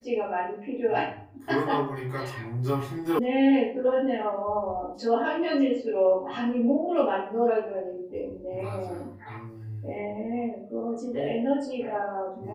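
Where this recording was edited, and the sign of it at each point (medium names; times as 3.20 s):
3.19 s: sound stops dead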